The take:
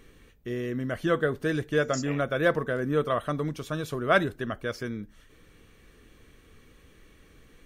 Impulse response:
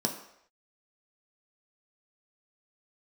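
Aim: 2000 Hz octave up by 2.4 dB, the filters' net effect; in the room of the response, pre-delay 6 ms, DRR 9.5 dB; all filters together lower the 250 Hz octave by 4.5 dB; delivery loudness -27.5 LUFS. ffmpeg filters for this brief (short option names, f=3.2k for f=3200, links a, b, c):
-filter_complex "[0:a]equalizer=f=250:t=o:g=-6.5,equalizer=f=2k:t=o:g=3.5,asplit=2[a][b];[1:a]atrim=start_sample=2205,adelay=6[c];[b][c]afir=irnorm=-1:irlink=0,volume=-16dB[d];[a][d]amix=inputs=2:normalize=0,volume=0.5dB"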